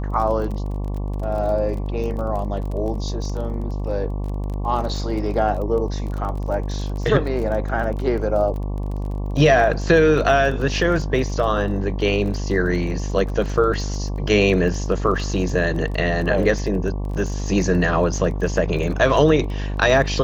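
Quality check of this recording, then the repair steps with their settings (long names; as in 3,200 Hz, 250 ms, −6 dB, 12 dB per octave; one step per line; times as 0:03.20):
mains buzz 50 Hz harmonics 23 −25 dBFS
surface crackle 25 per second −29 dBFS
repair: click removal
hum removal 50 Hz, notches 23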